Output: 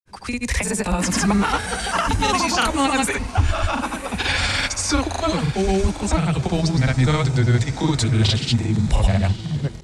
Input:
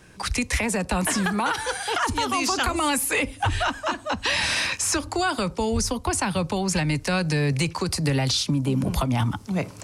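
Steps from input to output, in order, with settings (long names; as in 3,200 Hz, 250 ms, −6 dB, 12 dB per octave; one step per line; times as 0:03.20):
pitch glide at a constant tempo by −4 semitones starting unshifted
low-shelf EQ 120 Hz +9.5 dB
on a send: feedback delay with all-pass diffusion 973 ms, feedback 46%, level −13 dB
on the sum: granular cloud, pitch spread up and down by 0 semitones
automatic gain control gain up to 11.5 dB
level −4.5 dB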